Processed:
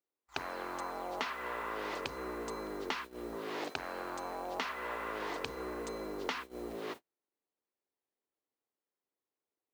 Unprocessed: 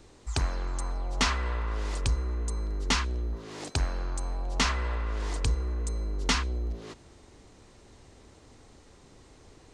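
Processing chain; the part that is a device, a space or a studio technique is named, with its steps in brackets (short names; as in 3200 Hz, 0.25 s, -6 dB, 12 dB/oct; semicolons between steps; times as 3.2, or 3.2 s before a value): baby monitor (BPF 350–3100 Hz; compressor 10:1, threshold -41 dBFS, peak gain reduction 16.5 dB; white noise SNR 21 dB; gate -50 dBFS, range -44 dB); gain +6.5 dB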